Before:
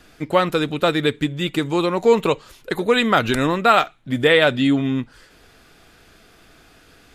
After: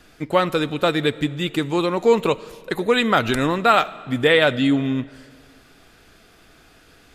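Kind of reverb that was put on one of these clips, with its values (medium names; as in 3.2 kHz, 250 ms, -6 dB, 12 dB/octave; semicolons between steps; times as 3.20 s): algorithmic reverb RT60 2 s, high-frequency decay 0.85×, pre-delay 40 ms, DRR 19 dB; trim -1 dB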